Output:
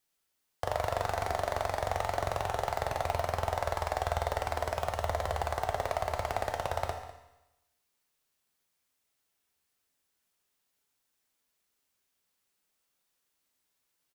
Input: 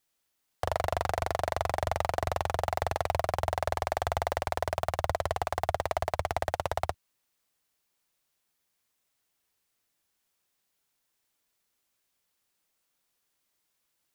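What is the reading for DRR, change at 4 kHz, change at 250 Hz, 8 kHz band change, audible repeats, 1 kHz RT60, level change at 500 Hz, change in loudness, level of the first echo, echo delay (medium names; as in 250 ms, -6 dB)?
3.0 dB, -1.5 dB, -1.5 dB, -1.5 dB, 1, 0.95 s, -1.5 dB, -1.5 dB, -16.5 dB, 200 ms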